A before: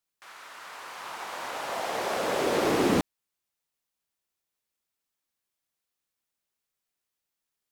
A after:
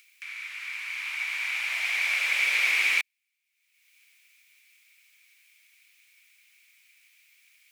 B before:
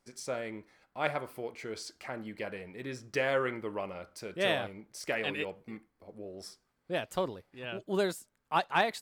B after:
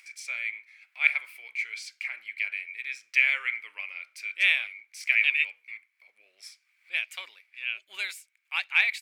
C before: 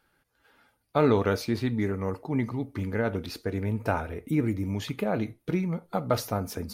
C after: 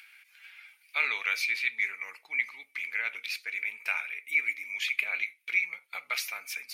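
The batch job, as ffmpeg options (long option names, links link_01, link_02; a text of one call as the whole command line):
ffmpeg -i in.wav -af "acompressor=mode=upward:threshold=-48dB:ratio=2.5,highpass=frequency=2300:width_type=q:width=11" out.wav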